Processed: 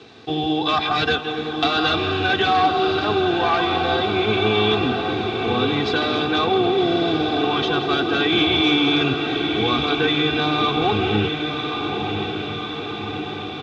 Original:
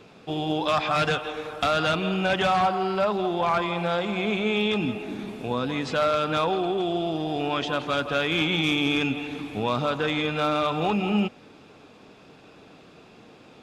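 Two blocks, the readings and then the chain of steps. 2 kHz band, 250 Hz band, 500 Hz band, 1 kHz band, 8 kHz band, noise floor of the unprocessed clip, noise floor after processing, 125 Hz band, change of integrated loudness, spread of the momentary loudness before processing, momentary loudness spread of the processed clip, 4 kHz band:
+6.0 dB, +6.0 dB, +5.0 dB, +5.5 dB, n/a, -51 dBFS, -29 dBFS, +5.0 dB, +5.0 dB, 7 LU, 8 LU, +9.5 dB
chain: octaver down 1 oct, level 0 dB; low shelf 240 Hz +4.5 dB; comb 2.6 ms, depth 97%; in parallel at -1 dB: compressor, threshold -28 dBFS, peak gain reduction 14.5 dB; on the sum: crossover distortion -47.5 dBFS; requantised 8-bit, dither none; speaker cabinet 150–5700 Hz, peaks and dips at 210 Hz +10 dB, 1600 Hz +3 dB, 3800 Hz +9 dB; on a send: diffused feedback echo 1.155 s, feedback 65%, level -6 dB; on the sum: gain -2.5 dB

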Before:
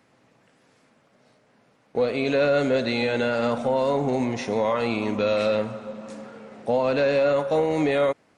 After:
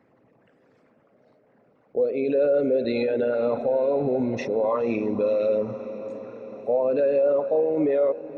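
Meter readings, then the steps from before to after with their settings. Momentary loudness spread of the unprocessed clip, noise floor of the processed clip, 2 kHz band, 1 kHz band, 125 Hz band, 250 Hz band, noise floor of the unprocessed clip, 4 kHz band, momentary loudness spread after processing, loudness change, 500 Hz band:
13 LU, -62 dBFS, -10.0 dB, -6.0 dB, -6.5 dB, -1.5 dB, -62 dBFS, under -10 dB, 12 LU, -0.5 dB, +1.0 dB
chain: formant sharpening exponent 2; diffused feedback echo 0.525 s, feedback 67%, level -16 dB

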